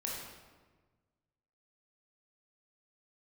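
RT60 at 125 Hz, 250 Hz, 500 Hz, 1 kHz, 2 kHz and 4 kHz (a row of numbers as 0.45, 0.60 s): 1.9, 1.6, 1.5, 1.3, 1.1, 0.90 s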